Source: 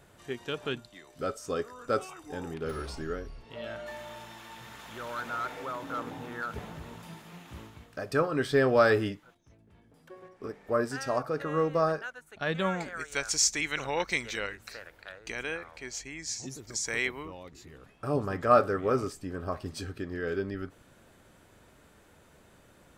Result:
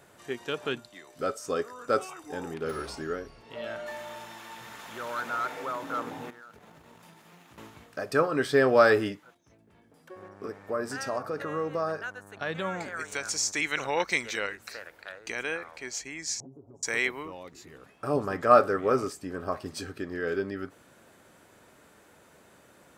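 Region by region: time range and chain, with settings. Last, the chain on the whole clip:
6.3–7.58 G.711 law mismatch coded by A + compressor 8:1, threshold -49 dBFS
10.15–13.51 compressor 2:1, threshold -33 dBFS + buzz 100 Hz, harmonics 18, -52 dBFS -5 dB/oct
16.4–16.83 inverse Chebyshev low-pass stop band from 1700 Hz + comb 7.3 ms, depth 73% + compressor 3:1, threshold -48 dBFS
whole clip: HPF 240 Hz 6 dB/oct; bell 3300 Hz -2.5 dB; gain +3.5 dB

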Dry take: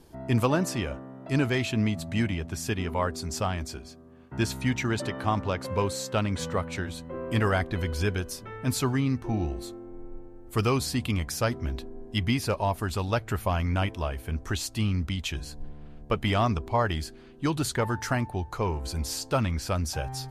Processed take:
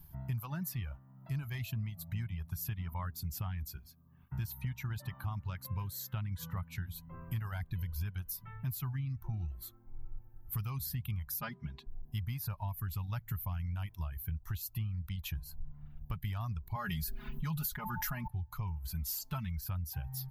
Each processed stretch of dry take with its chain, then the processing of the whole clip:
11.41–11.87 BPF 160–5200 Hz + comb 4.9 ms, depth 90%
16.75–18.28 bell 81 Hz -7 dB 1.3 oct + comb 4.8 ms, depth 98% + fast leveller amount 70%
18.93–19.61 comb 4.6 ms, depth 59% + dynamic EQ 6800 Hz, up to +8 dB, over -46 dBFS, Q 0.78
whole clip: reverb removal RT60 0.86 s; EQ curve 160 Hz 0 dB, 250 Hz -19 dB, 470 Hz -28 dB, 910 Hz -11 dB, 9000 Hz -14 dB, 13000 Hz +12 dB; compressor, threshold -37 dBFS; gain +2.5 dB

